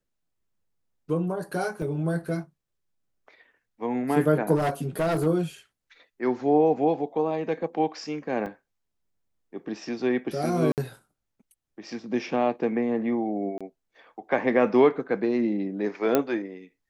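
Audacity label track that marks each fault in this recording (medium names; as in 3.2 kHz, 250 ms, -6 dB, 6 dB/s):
1.820000	1.820000	dropout 3.5 ms
4.550000	5.270000	clipped -21 dBFS
8.460000	8.460000	dropout 3.2 ms
10.720000	10.780000	dropout 58 ms
13.580000	13.610000	dropout 26 ms
16.150000	16.150000	pop -8 dBFS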